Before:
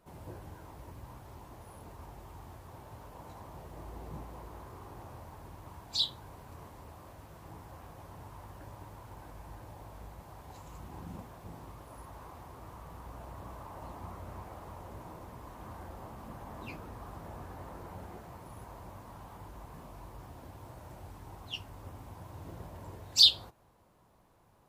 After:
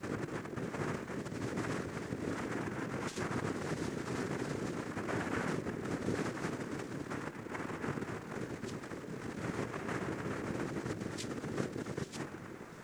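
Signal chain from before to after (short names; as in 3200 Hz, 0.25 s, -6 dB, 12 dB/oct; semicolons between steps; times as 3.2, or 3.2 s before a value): low shelf 220 Hz +10 dB; notches 50/100/150/200/250/300/350/400/450 Hz; plain phase-vocoder stretch 0.52×; negative-ratio compressor -50 dBFS, ratio -1; on a send: diffused feedback echo 0.736 s, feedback 41%, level -10.5 dB; on the sum: LFO notch sine 0.42 Hz 570–2300 Hz; in parallel at -11 dB: requantised 8-bit, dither none; on the sum: noise vocoder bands 3; added noise pink -77 dBFS; gain +10 dB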